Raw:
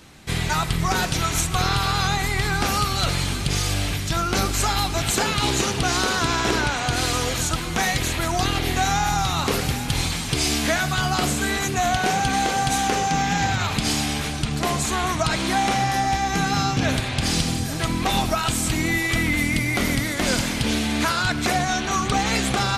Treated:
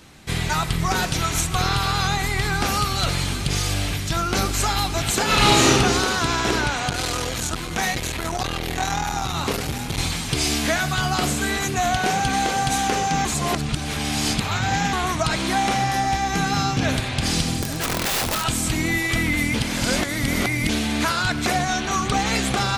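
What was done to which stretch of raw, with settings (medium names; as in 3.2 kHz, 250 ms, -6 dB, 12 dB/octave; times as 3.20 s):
5.24–5.78 s: reverb throw, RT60 1.1 s, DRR -6.5 dB
6.89–9.98 s: transformer saturation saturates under 420 Hz
13.25–14.93 s: reverse
17.62–18.45 s: integer overflow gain 17.5 dB
19.54–20.69 s: reverse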